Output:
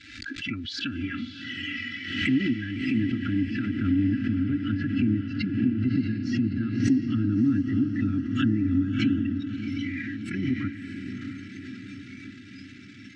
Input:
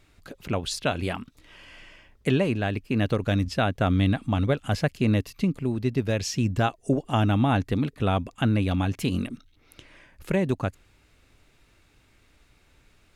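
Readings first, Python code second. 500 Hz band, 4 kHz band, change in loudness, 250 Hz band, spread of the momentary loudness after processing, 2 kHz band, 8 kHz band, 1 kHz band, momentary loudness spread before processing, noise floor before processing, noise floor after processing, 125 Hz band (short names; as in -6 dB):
-14.0 dB, -1.0 dB, -1.0 dB, +3.0 dB, 16 LU, 0.0 dB, under -10 dB, -16.0 dB, 7 LU, -62 dBFS, -45 dBFS, -4.0 dB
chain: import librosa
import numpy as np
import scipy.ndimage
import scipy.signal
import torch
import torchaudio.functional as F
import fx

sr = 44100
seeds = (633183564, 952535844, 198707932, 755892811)

p1 = x + 0.5 * 10.0 ** (-30.0 / 20.0) * np.sign(x)
p2 = fx.noise_reduce_blind(p1, sr, reduce_db=17)
p3 = fx.env_lowpass_down(p2, sr, base_hz=640.0, full_db=-19.0)
p4 = scipy.signal.sosfilt(scipy.signal.ellip(3, 1.0, 40, [310.0, 1600.0], 'bandstop', fs=sr, output='sos'), p3)
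p5 = fx.peak_eq(p4, sr, hz=390.0, db=-13.0, octaves=0.63)
p6 = p5 + 0.84 * np.pad(p5, (int(3.0 * sr / 1000.0), 0))[:len(p5)]
p7 = fx.level_steps(p6, sr, step_db=13)
p8 = p6 + (p7 * 10.0 ** (-1.5 / 20.0))
p9 = fx.bandpass_edges(p8, sr, low_hz=190.0, high_hz=6800.0)
p10 = fx.air_absorb(p9, sr, metres=140.0)
p11 = p10 + fx.echo_diffused(p10, sr, ms=641, feedback_pct=64, wet_db=-7.0, dry=0)
y = fx.pre_swell(p11, sr, db_per_s=56.0)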